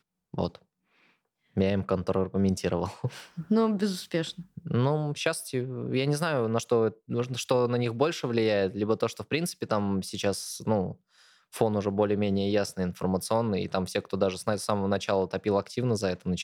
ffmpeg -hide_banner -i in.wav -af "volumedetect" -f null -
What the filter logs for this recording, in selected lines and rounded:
mean_volume: -28.3 dB
max_volume: -9.1 dB